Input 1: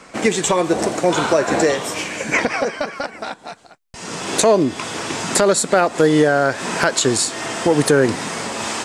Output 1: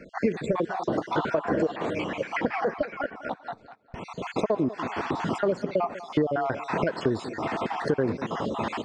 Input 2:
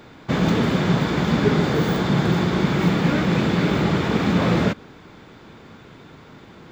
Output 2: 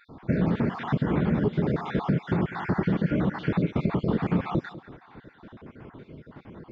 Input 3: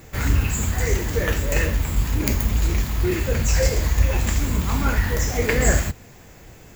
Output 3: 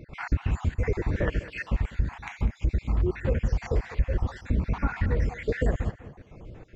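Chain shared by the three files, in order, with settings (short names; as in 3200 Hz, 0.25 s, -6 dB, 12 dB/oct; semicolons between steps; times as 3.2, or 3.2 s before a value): random spectral dropouts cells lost 50%; compressor 6:1, threshold -22 dBFS; tape spacing loss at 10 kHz 37 dB; on a send: tape echo 0.199 s, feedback 31%, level -14 dB, low-pass 3600 Hz; on the sum: gain +2.5 dB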